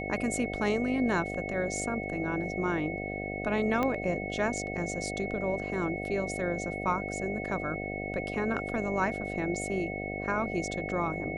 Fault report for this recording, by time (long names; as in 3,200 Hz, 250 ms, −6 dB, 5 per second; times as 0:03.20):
mains buzz 50 Hz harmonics 15 −37 dBFS
whistle 2,200 Hz −38 dBFS
0:03.83: click −16 dBFS